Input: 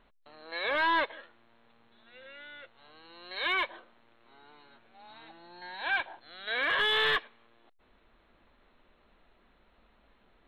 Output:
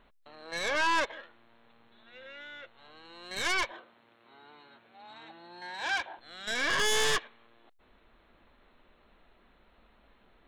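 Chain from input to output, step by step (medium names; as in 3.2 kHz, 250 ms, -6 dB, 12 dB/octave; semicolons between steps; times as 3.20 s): tracing distortion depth 0.11 ms; 3.71–6.19 s: high-pass 91 Hz; peak limiter -24.5 dBFS, peak gain reduction 4 dB; trim +2 dB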